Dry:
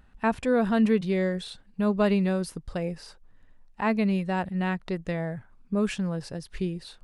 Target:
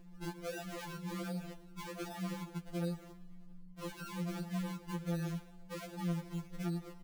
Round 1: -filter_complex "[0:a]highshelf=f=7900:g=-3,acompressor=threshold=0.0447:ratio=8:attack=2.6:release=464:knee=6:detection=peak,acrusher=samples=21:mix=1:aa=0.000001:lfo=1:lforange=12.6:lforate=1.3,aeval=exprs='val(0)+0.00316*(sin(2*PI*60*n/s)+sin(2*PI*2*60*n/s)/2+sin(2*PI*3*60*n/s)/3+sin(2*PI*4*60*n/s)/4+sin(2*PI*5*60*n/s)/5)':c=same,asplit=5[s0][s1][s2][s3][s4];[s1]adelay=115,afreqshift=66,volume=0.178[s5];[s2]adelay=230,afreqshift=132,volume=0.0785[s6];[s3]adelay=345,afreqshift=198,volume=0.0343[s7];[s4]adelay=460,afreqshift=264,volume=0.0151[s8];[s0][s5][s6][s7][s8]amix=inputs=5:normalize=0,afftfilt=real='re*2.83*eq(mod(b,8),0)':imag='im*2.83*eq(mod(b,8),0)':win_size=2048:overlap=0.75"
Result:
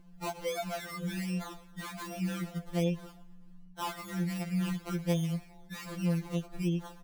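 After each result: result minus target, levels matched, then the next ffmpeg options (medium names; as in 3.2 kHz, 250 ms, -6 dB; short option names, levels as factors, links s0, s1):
compression: peak gain reduction -6.5 dB; decimation with a swept rate: distortion -10 dB
-filter_complex "[0:a]highshelf=f=7900:g=-3,acompressor=threshold=0.0188:ratio=8:attack=2.6:release=464:knee=6:detection=peak,acrusher=samples=21:mix=1:aa=0.000001:lfo=1:lforange=12.6:lforate=1.3,aeval=exprs='val(0)+0.00316*(sin(2*PI*60*n/s)+sin(2*PI*2*60*n/s)/2+sin(2*PI*3*60*n/s)/3+sin(2*PI*4*60*n/s)/4+sin(2*PI*5*60*n/s)/5)':c=same,asplit=5[s0][s1][s2][s3][s4];[s1]adelay=115,afreqshift=66,volume=0.178[s5];[s2]adelay=230,afreqshift=132,volume=0.0785[s6];[s3]adelay=345,afreqshift=198,volume=0.0343[s7];[s4]adelay=460,afreqshift=264,volume=0.0151[s8];[s0][s5][s6][s7][s8]amix=inputs=5:normalize=0,afftfilt=real='re*2.83*eq(mod(b,8),0)':imag='im*2.83*eq(mod(b,8),0)':win_size=2048:overlap=0.75"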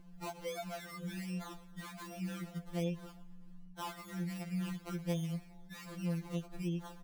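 decimation with a swept rate: distortion -10 dB
-filter_complex "[0:a]highshelf=f=7900:g=-3,acompressor=threshold=0.0188:ratio=8:attack=2.6:release=464:knee=6:detection=peak,acrusher=samples=58:mix=1:aa=0.000001:lfo=1:lforange=34.8:lforate=1.3,aeval=exprs='val(0)+0.00316*(sin(2*PI*60*n/s)+sin(2*PI*2*60*n/s)/2+sin(2*PI*3*60*n/s)/3+sin(2*PI*4*60*n/s)/4+sin(2*PI*5*60*n/s)/5)':c=same,asplit=5[s0][s1][s2][s3][s4];[s1]adelay=115,afreqshift=66,volume=0.178[s5];[s2]adelay=230,afreqshift=132,volume=0.0785[s6];[s3]adelay=345,afreqshift=198,volume=0.0343[s7];[s4]adelay=460,afreqshift=264,volume=0.0151[s8];[s0][s5][s6][s7][s8]amix=inputs=5:normalize=0,afftfilt=real='re*2.83*eq(mod(b,8),0)':imag='im*2.83*eq(mod(b,8),0)':win_size=2048:overlap=0.75"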